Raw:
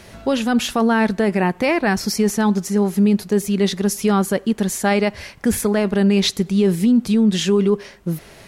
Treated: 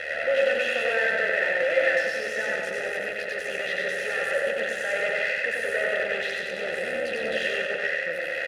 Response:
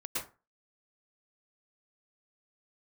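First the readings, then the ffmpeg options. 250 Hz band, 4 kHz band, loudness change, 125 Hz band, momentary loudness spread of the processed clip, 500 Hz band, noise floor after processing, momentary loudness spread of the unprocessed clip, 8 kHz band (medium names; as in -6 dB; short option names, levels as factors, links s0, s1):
-28.5 dB, -8.0 dB, -7.0 dB, under -25 dB, 6 LU, -5.0 dB, -32 dBFS, 5 LU, -16.5 dB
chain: -filter_complex "[0:a]acrossover=split=250[s0][s1];[s0]acompressor=threshold=0.0316:ratio=6[s2];[s2][s1]amix=inputs=2:normalize=0,tremolo=f=74:d=0.974,asplit=2[s3][s4];[s4]highpass=f=720:p=1,volume=35.5,asoftclip=type=tanh:threshold=0.562[s5];[s3][s5]amix=inputs=2:normalize=0,lowpass=f=5400:p=1,volume=0.501,asoftclip=type=tanh:threshold=0.075,equalizer=f=9400:w=7.3:g=9,aecho=1:1:94|188|282|376|470|564|658|752:0.708|0.404|0.23|0.131|0.0747|0.0426|0.0243|0.0138,asplit=2[s6][s7];[1:a]atrim=start_sample=2205[s8];[s7][s8]afir=irnorm=-1:irlink=0,volume=0.596[s9];[s6][s9]amix=inputs=2:normalize=0,aeval=exprs='max(val(0),0)':c=same,asplit=3[s10][s11][s12];[s10]bandpass=f=530:t=q:w=8,volume=1[s13];[s11]bandpass=f=1840:t=q:w=8,volume=0.501[s14];[s12]bandpass=f=2480:t=q:w=8,volume=0.355[s15];[s13][s14][s15]amix=inputs=3:normalize=0,equalizer=f=1600:w=2:g=11.5,aecho=1:1:1.5:0.49,volume=1.88"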